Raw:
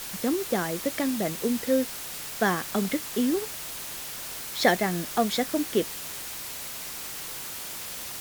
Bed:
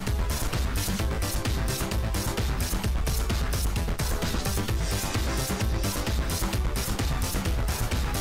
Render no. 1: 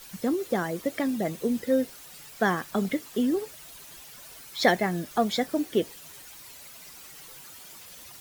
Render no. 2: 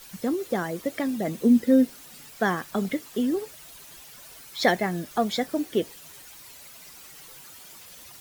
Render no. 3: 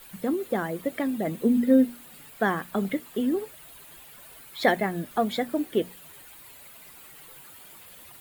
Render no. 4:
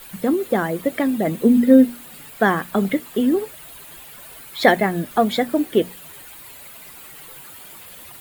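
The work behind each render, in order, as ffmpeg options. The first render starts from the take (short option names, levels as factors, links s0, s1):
-af "afftdn=nr=12:nf=-37"
-filter_complex "[0:a]asettb=1/sr,asplit=3[s0][s1][s2];[s0]atrim=end=1.274[s3];[s1]atrim=start=1.27:end=2.31,asetpts=PTS-STARTPTS,afade=t=in:d=0.004:c=qsin,afade=t=out:st=1.036:d=0.004:c=qsin,equalizer=f=240:t=o:w=0.61:g=10.5[s4];[s2]atrim=start=2.306[s5];[s3][s4]acrossfade=d=0.004:c1=hsin:c2=qsin[s6];[s6][s5]acrossfade=d=0.004:c1=qsin:c2=hsin"
-af "equalizer=f=5700:t=o:w=0.68:g=-13,bandreject=f=60:t=h:w=6,bandreject=f=120:t=h:w=6,bandreject=f=180:t=h:w=6,bandreject=f=240:t=h:w=6"
-af "volume=2.37"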